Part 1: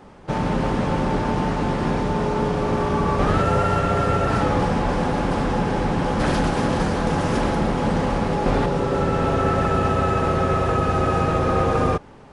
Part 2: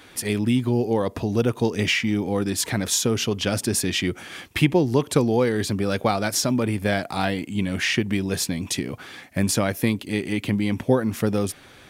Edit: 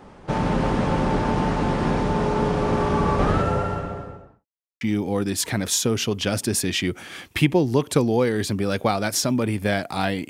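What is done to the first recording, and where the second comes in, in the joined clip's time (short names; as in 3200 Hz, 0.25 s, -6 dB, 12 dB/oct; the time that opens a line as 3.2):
part 1
3.03–4.46 studio fade out
4.46–4.81 mute
4.81 switch to part 2 from 2.01 s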